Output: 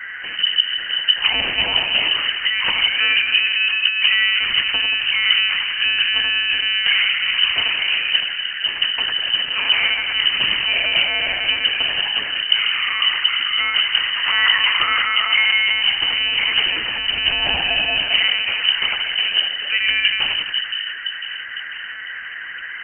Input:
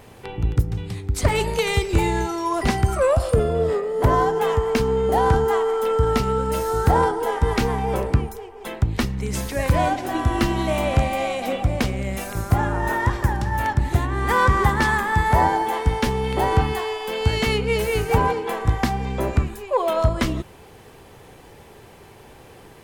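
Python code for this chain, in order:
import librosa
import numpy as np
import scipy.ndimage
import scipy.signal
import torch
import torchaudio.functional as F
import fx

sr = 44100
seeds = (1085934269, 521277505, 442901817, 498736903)

p1 = fx.echo_split(x, sr, split_hz=310.0, low_ms=506, high_ms=89, feedback_pct=52, wet_db=-4.5)
p2 = 10.0 ** (-14.0 / 20.0) * np.tanh(p1 / 10.0 ** (-14.0 / 20.0))
p3 = p1 + (p2 * 10.0 ** (-6.5 / 20.0))
p4 = fx.dmg_noise_band(p3, sr, seeds[0], low_hz=910.0, high_hz=1500.0, level_db=-28.0)
p5 = fx.lpc_monotone(p4, sr, seeds[1], pitch_hz=210.0, order=10)
p6 = fx.freq_invert(p5, sr, carrier_hz=3000)
y = p6 * 10.0 ** (-3.5 / 20.0)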